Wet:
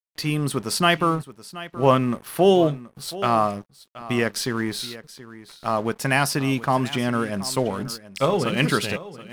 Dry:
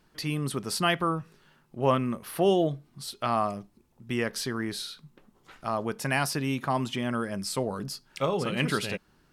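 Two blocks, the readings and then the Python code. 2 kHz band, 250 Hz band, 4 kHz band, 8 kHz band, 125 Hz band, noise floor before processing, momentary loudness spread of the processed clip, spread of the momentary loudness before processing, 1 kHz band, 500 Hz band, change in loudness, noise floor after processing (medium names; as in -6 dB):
+6.5 dB, +6.5 dB, +6.0 dB, +6.0 dB, +6.0 dB, -65 dBFS, 15 LU, 12 LU, +6.5 dB, +6.5 dB, +6.5 dB, -56 dBFS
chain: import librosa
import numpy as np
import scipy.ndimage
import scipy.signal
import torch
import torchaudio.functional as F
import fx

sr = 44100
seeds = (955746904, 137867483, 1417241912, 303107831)

y = np.sign(x) * np.maximum(np.abs(x) - 10.0 ** (-48.0 / 20.0), 0.0)
y = y + 10.0 ** (-16.5 / 20.0) * np.pad(y, (int(727 * sr / 1000.0), 0))[:len(y)]
y = y * librosa.db_to_amplitude(7.0)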